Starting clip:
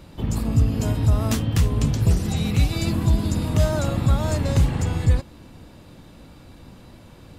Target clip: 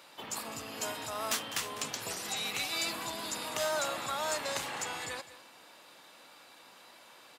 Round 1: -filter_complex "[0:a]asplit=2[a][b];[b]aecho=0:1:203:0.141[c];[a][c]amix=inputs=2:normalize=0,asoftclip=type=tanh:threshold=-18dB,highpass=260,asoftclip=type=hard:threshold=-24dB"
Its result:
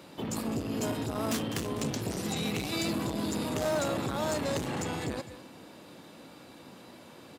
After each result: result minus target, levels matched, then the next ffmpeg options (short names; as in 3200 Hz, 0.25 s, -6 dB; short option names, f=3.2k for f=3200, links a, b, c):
250 Hz band +13.0 dB; soft clip: distortion +15 dB
-filter_complex "[0:a]asplit=2[a][b];[b]aecho=0:1:203:0.141[c];[a][c]amix=inputs=2:normalize=0,asoftclip=type=tanh:threshold=-18dB,highpass=860,asoftclip=type=hard:threshold=-24dB"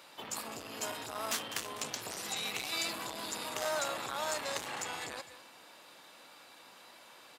soft clip: distortion +15 dB
-filter_complex "[0:a]asplit=2[a][b];[b]aecho=0:1:203:0.141[c];[a][c]amix=inputs=2:normalize=0,asoftclip=type=tanh:threshold=-7dB,highpass=860,asoftclip=type=hard:threshold=-24dB"